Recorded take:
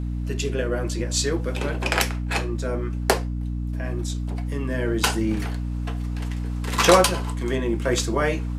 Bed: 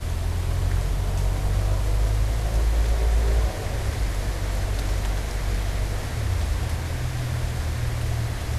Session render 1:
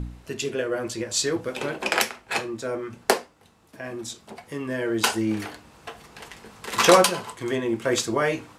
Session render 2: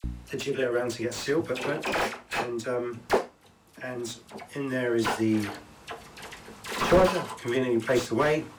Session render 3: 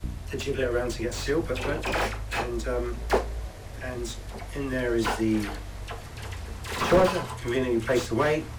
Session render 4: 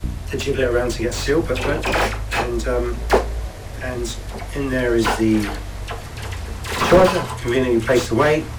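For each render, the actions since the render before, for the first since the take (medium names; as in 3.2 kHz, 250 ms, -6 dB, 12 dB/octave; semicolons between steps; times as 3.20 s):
de-hum 60 Hz, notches 5
phase dispersion lows, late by 41 ms, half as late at 1.5 kHz; slew-rate limiter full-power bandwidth 94 Hz
add bed -13 dB
trim +8 dB; peak limiter -1 dBFS, peak gain reduction 1 dB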